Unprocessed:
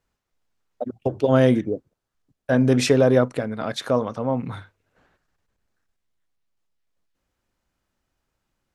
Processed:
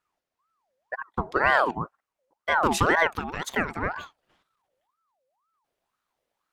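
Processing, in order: gliding tape speed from 80% -> 188%; ring modulator with a swept carrier 920 Hz, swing 45%, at 2 Hz; trim -2 dB

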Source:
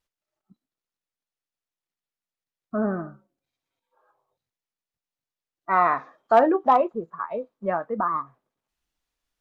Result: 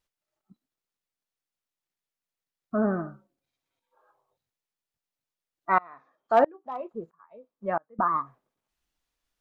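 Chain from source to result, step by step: 5.78–7.99 s: sawtooth tremolo in dB swelling 1.5 Hz, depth 31 dB

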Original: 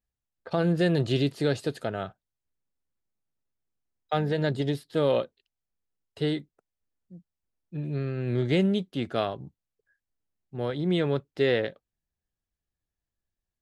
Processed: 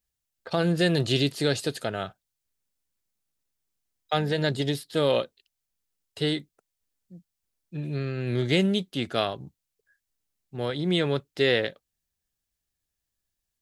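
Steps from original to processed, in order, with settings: treble shelf 2.4 kHz +11 dB

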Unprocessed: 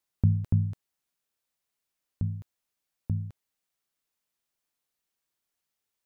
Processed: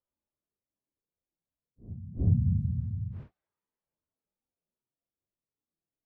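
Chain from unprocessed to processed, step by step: band-stop 740 Hz, Q 12; level-controlled noise filter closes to 430 Hz, open at -23.5 dBFS; pre-echo 80 ms -17 dB; Paulstretch 4.6×, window 0.05 s, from 2.61 s; trim +2.5 dB

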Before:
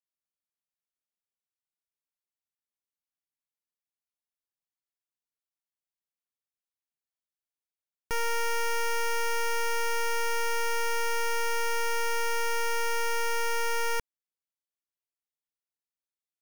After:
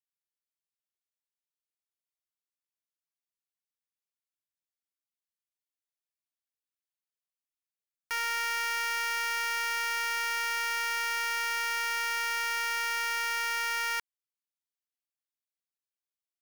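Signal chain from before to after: high-pass 1.4 kHz 12 dB/octave; waveshaping leveller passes 2

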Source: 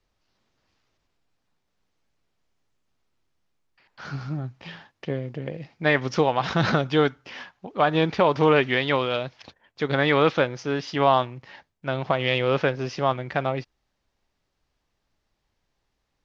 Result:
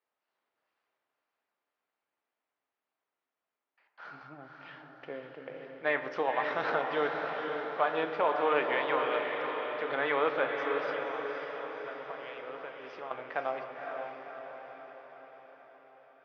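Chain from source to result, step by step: high-pass 530 Hz 12 dB/octave; 10.90–13.11 s: compression 4:1, threshold -36 dBFS, peak gain reduction 17.5 dB; low-pass 2.2 kHz 12 dB/octave; echo that smears into a reverb 529 ms, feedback 58%, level -4.5 dB; reverberation RT60 1.8 s, pre-delay 5 ms, DRR 8 dB; trim -6.5 dB

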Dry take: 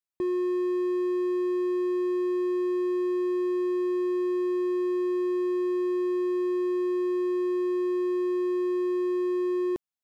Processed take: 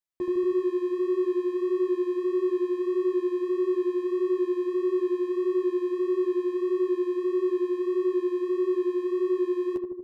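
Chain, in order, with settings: flange 1.6 Hz, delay 4.5 ms, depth 9.5 ms, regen -21%; on a send: filtered feedback delay 78 ms, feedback 76%, low-pass 910 Hz, level -3.5 dB; on the sum: trim +1.5 dB

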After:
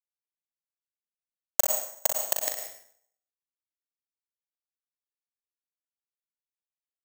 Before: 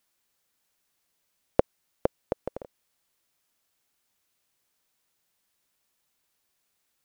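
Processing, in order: knee-point frequency compression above 2.5 kHz 1.5:1; steep high-pass 580 Hz 96 dB/octave; treble shelf 3.5 kHz -11 dB; in parallel at +3 dB: peak limiter -27 dBFS, peak gain reduction 11.5 dB; on the sum: bit crusher 4-bit; early reflections 40 ms -6.5 dB, 62 ms -8 dB; plate-style reverb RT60 0.62 s, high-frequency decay 0.85×, pre-delay 85 ms, DRR 4.5 dB; careless resampling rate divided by 6×, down none, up zero stuff; trim -6 dB

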